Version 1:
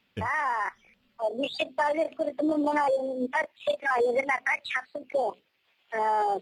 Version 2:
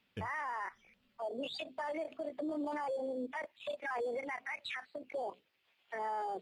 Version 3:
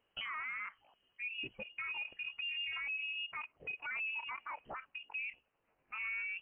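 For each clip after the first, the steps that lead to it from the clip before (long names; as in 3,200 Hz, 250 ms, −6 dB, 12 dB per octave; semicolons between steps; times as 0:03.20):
brickwall limiter −26 dBFS, peak gain reduction 11.5 dB; level −5.5 dB
voice inversion scrambler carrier 3,100 Hz; level −2.5 dB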